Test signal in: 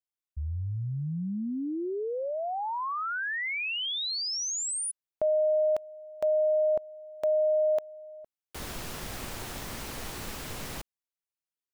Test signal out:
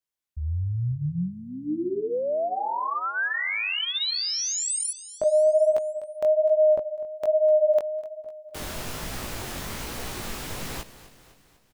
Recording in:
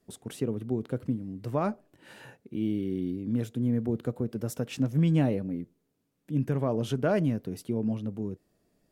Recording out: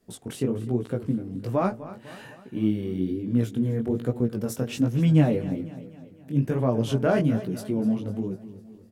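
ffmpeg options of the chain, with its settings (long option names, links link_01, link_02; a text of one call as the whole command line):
ffmpeg -i in.wav -af "aecho=1:1:251|502|753|1004|1255:0.168|0.0907|0.049|0.0264|0.0143,flanger=delay=16:depth=7:speed=1.2,volume=7dB" out.wav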